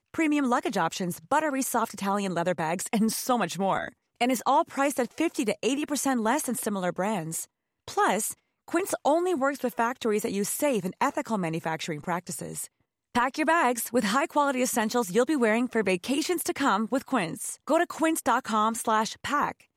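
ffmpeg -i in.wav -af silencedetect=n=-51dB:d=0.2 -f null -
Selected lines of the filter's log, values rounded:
silence_start: 3.93
silence_end: 4.21 | silence_duration: 0.28
silence_start: 7.45
silence_end: 7.88 | silence_duration: 0.43
silence_start: 8.34
silence_end: 8.68 | silence_duration: 0.34
silence_start: 12.67
silence_end: 13.15 | silence_duration: 0.48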